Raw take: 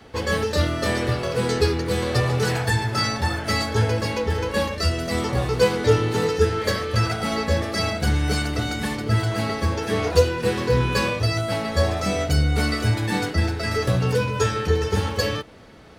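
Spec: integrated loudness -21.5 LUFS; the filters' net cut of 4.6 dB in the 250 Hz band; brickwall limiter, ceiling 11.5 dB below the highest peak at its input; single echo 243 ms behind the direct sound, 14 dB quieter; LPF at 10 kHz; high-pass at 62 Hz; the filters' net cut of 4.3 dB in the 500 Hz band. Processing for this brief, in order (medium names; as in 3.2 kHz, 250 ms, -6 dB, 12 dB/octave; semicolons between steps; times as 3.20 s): high-pass 62 Hz; low-pass 10 kHz; peaking EQ 250 Hz -5.5 dB; peaking EQ 500 Hz -3.5 dB; peak limiter -18 dBFS; delay 243 ms -14 dB; trim +6 dB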